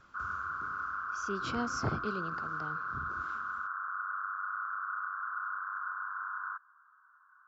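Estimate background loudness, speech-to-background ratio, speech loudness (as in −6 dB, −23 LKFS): −37.0 LKFS, −3.0 dB, −40.0 LKFS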